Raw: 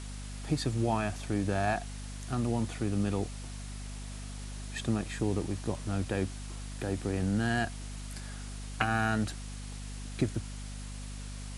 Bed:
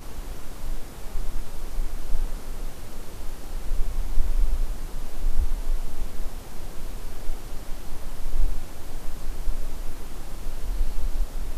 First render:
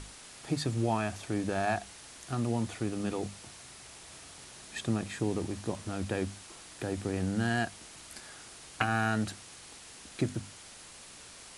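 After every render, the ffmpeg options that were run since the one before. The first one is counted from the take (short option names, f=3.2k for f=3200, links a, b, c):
-af "bandreject=f=50:t=h:w=6,bandreject=f=100:t=h:w=6,bandreject=f=150:t=h:w=6,bandreject=f=200:t=h:w=6,bandreject=f=250:t=h:w=6"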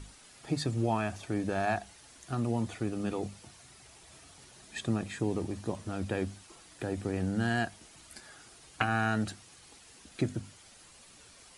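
-af "afftdn=nr=8:nf=-50"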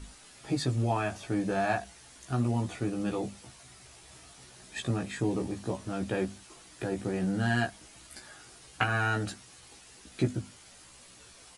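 -filter_complex "[0:a]asplit=2[a][b];[b]adelay=16,volume=-2.5dB[c];[a][c]amix=inputs=2:normalize=0"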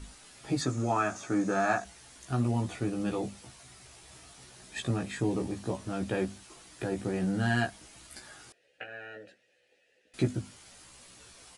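-filter_complex "[0:a]asettb=1/sr,asplit=3[a][b][c];[a]atrim=end=0.614[d];[b]atrim=start=0.61:end=1.85,asetpts=PTS-STARTPTS,afade=t=in:d=0.004:c=qsin,afade=t=out:st=1.236:d=0.004:c=qsin,highpass=140,equalizer=f=280:t=q:w=4:g=4,equalizer=f=1.3k:t=q:w=4:g=10,equalizer=f=3k:t=q:w=4:g=-6,equalizer=f=4.4k:t=q:w=4:g=-3,equalizer=f=6.6k:t=q:w=4:g=10,lowpass=f=9.7k:w=0.5412,lowpass=f=9.7k:w=1.3066[e];[c]atrim=start=1.846[f];[d][e]acrossfade=d=0.004:c1=hsin:c2=qsin[g];[g][f]acrossfade=d=0.004:c1=qsin:c2=hsin,asettb=1/sr,asplit=3[h][i][j];[h]atrim=end=8.524[k];[i]atrim=start=8.52:end=10.14,asetpts=PTS-STARTPTS,afade=t=in:d=0.004:c=qsin,afade=t=out:st=1.616:d=0.004:c=qsin,asplit=3[l][m][n];[l]bandpass=f=530:t=q:w=8,volume=0dB[o];[m]bandpass=f=1.84k:t=q:w=8,volume=-6dB[p];[n]bandpass=f=2.48k:t=q:w=8,volume=-9dB[q];[o][p][q]amix=inputs=3:normalize=0[r];[j]atrim=start=10.136[s];[k][r]acrossfade=d=0.004:c1=hsin:c2=qsin[t];[t][s]acrossfade=d=0.004:c1=qsin:c2=hsin"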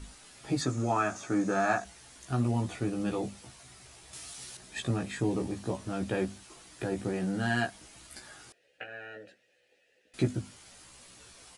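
-filter_complex "[0:a]asettb=1/sr,asplit=3[a][b][c];[a]atrim=end=4.134[d];[b]atrim=start=4.13:end=4.57,asetpts=PTS-STARTPTS,afade=t=in:d=0.004:c=qsin,afade=t=out:st=0.436:d=0.004:c=qsin,highshelf=f=2.4k:g=11[e];[c]atrim=start=4.566[f];[d][e]acrossfade=d=0.004:c1=hsin:c2=qsin[g];[g][f]acrossfade=d=0.004:c1=qsin:c2=hsin,asettb=1/sr,asplit=3[h][i][j];[h]atrim=end=7.134[k];[i]atrim=start=7.13:end=7.75,asetpts=PTS-STARTPTS,afade=t=in:d=0.004:c=qsin,afade=t=out:st=0.616:d=0.004:c=qsin,highpass=f=150:p=1[l];[j]atrim=start=7.746[m];[k][l]acrossfade=d=0.004:c1=hsin:c2=qsin[n];[n][m]acrossfade=d=0.004:c1=qsin:c2=hsin"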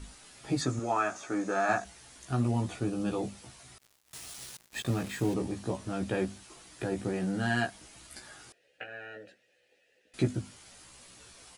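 -filter_complex "[0:a]asettb=1/sr,asplit=3[a][b][c];[a]atrim=end=0.794[d];[b]atrim=start=0.79:end=1.69,asetpts=PTS-STARTPTS,afade=t=in:d=0.004:c=qsin,afade=t=out:st=0.896:d=0.004:c=qsin,bass=f=250:g=-11,treble=f=4k:g=-2[e];[c]atrim=start=1.686[f];[d][e]acrossfade=d=0.004:c1=hsin:c2=qsin[g];[g][f]acrossfade=d=0.004:c1=qsin:c2=hsin,asettb=1/sr,asplit=3[h][i][j];[h]atrim=end=2.744[k];[i]atrim=start=2.74:end=3.19,asetpts=PTS-STARTPTS,afade=t=in:d=0.004:c=qsin,afade=t=out:st=0.446:d=0.004:c=qsin,equalizer=f=2k:t=o:w=0.3:g=-8.5[l];[j]atrim=start=3.186[m];[k][l]acrossfade=d=0.004:c1=hsin:c2=qsin[n];[n][m]acrossfade=d=0.004:c1=qsin:c2=hsin,asettb=1/sr,asplit=3[o][p][q];[o]atrim=end=3.784[r];[p]atrim=start=3.78:end=5.34,asetpts=PTS-STARTPTS,afade=t=in:d=0.004:c=qsin,afade=t=out:st=1.556:d=0.004:c=qsin,acrusher=bits=6:mix=0:aa=0.5[s];[q]atrim=start=5.336[t];[r][s]acrossfade=d=0.004:c1=hsin:c2=qsin[u];[u][t]acrossfade=d=0.004:c1=qsin:c2=hsin"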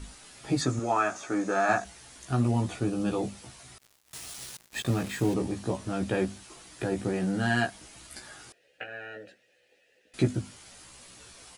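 -af "volume=3dB"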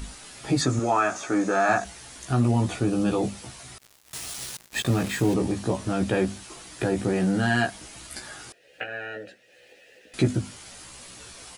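-filter_complex "[0:a]asplit=2[a][b];[b]alimiter=limit=-23dB:level=0:latency=1:release=53,volume=0.5dB[c];[a][c]amix=inputs=2:normalize=0,acompressor=mode=upward:threshold=-45dB:ratio=2.5"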